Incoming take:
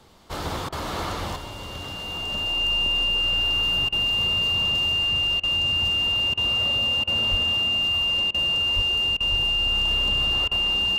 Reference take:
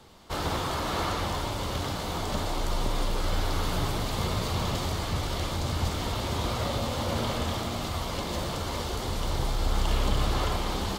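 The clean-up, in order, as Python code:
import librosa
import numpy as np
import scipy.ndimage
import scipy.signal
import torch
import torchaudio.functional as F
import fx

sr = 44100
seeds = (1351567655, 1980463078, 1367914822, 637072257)

y = fx.notch(x, sr, hz=2800.0, q=30.0)
y = fx.highpass(y, sr, hz=140.0, slope=24, at=(7.3, 7.42), fade=0.02)
y = fx.highpass(y, sr, hz=140.0, slope=24, at=(8.75, 8.87), fade=0.02)
y = fx.highpass(y, sr, hz=140.0, slope=24, at=(9.3, 9.42), fade=0.02)
y = fx.fix_interpolate(y, sr, at_s=(0.69, 3.89, 5.4, 6.34, 7.04, 8.31, 9.17, 10.48), length_ms=32.0)
y = fx.fix_level(y, sr, at_s=1.36, step_db=5.5)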